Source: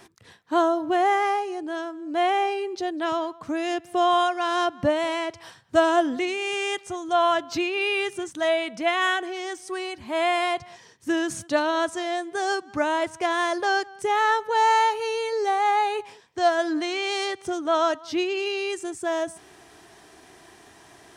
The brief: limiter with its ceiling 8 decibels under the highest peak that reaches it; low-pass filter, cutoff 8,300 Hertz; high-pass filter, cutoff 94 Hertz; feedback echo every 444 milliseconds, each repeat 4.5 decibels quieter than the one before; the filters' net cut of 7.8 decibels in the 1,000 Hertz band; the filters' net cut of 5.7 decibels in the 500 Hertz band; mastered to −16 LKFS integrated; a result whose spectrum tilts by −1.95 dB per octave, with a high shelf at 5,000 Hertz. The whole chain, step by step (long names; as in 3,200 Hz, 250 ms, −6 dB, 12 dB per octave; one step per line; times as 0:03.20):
high-pass filter 94 Hz
low-pass filter 8,300 Hz
parametric band 500 Hz −5 dB
parametric band 1,000 Hz −9 dB
high-shelf EQ 5,000 Hz +6 dB
brickwall limiter −21.5 dBFS
repeating echo 444 ms, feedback 60%, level −4.5 dB
level +13 dB